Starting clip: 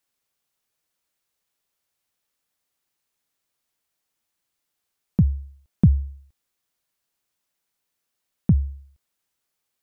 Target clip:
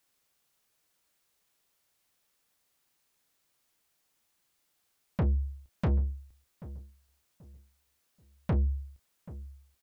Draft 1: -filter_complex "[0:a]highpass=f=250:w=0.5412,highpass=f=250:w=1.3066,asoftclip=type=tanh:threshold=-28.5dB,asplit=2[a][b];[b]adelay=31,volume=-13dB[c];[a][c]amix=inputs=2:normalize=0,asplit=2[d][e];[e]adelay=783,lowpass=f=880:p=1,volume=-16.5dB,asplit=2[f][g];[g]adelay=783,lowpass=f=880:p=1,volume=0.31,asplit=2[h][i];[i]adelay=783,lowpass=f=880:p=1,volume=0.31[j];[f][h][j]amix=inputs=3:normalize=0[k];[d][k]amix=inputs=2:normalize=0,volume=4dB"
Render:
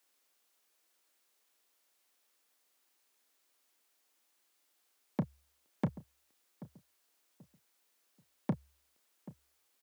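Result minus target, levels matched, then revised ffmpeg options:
250 Hz band +6.0 dB
-filter_complex "[0:a]asoftclip=type=tanh:threshold=-28.5dB,asplit=2[a][b];[b]adelay=31,volume=-13dB[c];[a][c]amix=inputs=2:normalize=0,asplit=2[d][e];[e]adelay=783,lowpass=f=880:p=1,volume=-16.5dB,asplit=2[f][g];[g]adelay=783,lowpass=f=880:p=1,volume=0.31,asplit=2[h][i];[i]adelay=783,lowpass=f=880:p=1,volume=0.31[j];[f][h][j]amix=inputs=3:normalize=0[k];[d][k]amix=inputs=2:normalize=0,volume=4dB"

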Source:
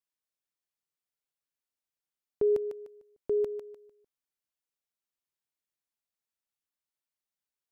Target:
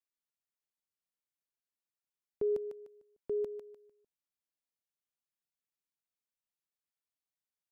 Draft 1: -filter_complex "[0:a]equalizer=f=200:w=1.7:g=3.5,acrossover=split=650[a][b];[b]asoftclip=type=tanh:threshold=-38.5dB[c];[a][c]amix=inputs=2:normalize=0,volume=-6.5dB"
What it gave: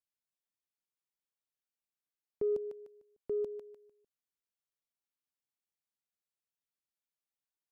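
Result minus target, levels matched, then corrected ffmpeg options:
soft clip: distortion +15 dB
-filter_complex "[0:a]equalizer=f=200:w=1.7:g=3.5,acrossover=split=650[a][b];[b]asoftclip=type=tanh:threshold=-29dB[c];[a][c]amix=inputs=2:normalize=0,volume=-6.5dB"

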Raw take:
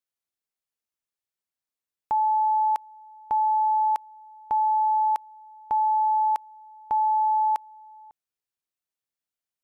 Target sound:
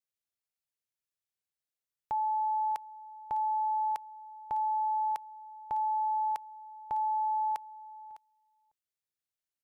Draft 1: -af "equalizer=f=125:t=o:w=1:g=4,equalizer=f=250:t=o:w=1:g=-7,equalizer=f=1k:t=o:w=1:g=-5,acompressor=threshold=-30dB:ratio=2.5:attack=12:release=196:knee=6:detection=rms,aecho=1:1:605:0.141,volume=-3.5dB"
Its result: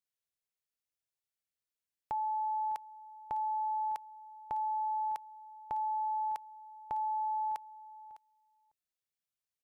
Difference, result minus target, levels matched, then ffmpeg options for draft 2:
compressor: peak gain reduction +3.5 dB
-af "equalizer=f=125:t=o:w=1:g=4,equalizer=f=250:t=o:w=1:g=-7,equalizer=f=1k:t=o:w=1:g=-5,aecho=1:1:605:0.141,volume=-3.5dB"

